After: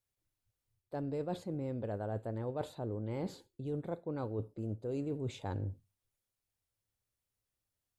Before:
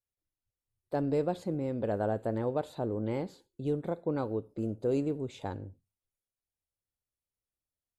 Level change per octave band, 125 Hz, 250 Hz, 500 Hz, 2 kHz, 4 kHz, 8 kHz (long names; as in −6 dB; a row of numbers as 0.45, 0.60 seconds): −2.0 dB, −6.5 dB, −7.5 dB, −6.5 dB, −2.0 dB, can't be measured